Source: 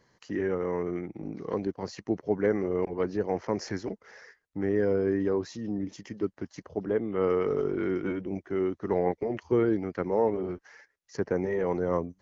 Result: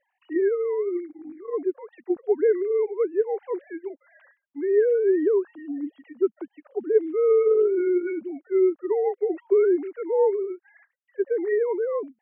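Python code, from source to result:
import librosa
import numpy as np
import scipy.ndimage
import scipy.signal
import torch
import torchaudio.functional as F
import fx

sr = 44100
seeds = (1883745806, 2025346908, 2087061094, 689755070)

y = fx.sine_speech(x, sr)
y = fx.dynamic_eq(y, sr, hz=410.0, q=1.4, threshold_db=-37.0, ratio=4.0, max_db=6)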